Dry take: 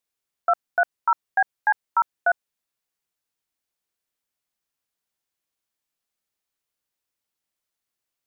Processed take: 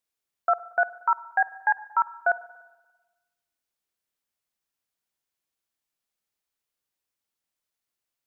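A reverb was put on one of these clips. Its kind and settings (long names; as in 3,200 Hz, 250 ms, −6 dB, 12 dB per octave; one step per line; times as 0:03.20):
spring reverb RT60 1.2 s, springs 48/58 ms, chirp 75 ms, DRR 16.5 dB
level −2 dB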